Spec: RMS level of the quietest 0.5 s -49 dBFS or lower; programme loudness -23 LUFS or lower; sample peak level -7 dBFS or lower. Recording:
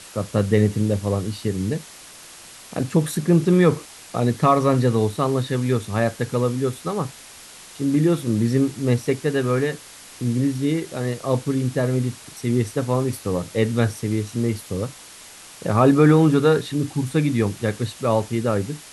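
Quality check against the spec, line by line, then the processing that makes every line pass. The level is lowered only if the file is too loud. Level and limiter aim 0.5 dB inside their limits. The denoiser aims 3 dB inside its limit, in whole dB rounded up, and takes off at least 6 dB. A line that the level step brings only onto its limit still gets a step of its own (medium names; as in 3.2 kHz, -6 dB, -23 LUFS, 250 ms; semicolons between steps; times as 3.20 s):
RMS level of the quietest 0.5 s -43 dBFS: fail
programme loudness -21.5 LUFS: fail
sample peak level -4.0 dBFS: fail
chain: noise reduction 7 dB, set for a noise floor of -43 dBFS; trim -2 dB; peak limiter -7.5 dBFS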